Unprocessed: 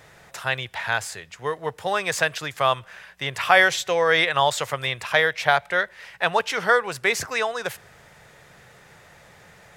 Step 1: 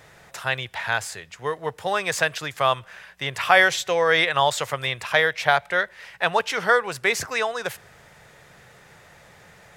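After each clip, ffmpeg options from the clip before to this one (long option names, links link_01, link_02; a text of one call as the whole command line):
ffmpeg -i in.wav -af anull out.wav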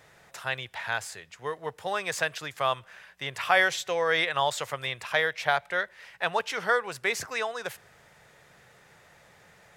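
ffmpeg -i in.wav -af "lowshelf=frequency=140:gain=-4,volume=-6dB" out.wav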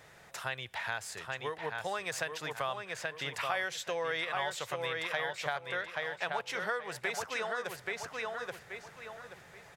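ffmpeg -i in.wav -filter_complex "[0:a]asplit=2[link_01][link_02];[link_02]adelay=829,lowpass=frequency=4600:poles=1,volume=-5dB,asplit=2[link_03][link_04];[link_04]adelay=829,lowpass=frequency=4600:poles=1,volume=0.29,asplit=2[link_05][link_06];[link_06]adelay=829,lowpass=frequency=4600:poles=1,volume=0.29,asplit=2[link_07][link_08];[link_08]adelay=829,lowpass=frequency=4600:poles=1,volume=0.29[link_09];[link_01][link_03][link_05][link_07][link_09]amix=inputs=5:normalize=0,acompressor=threshold=-34dB:ratio=3" out.wav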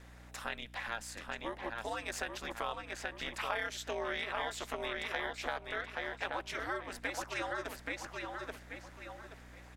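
ffmpeg -i in.wav -af "aeval=exprs='val(0)*sin(2*PI*110*n/s)':channel_layout=same,aeval=exprs='val(0)+0.002*(sin(2*PI*60*n/s)+sin(2*PI*2*60*n/s)/2+sin(2*PI*3*60*n/s)/3+sin(2*PI*4*60*n/s)/4+sin(2*PI*5*60*n/s)/5)':channel_layout=same" out.wav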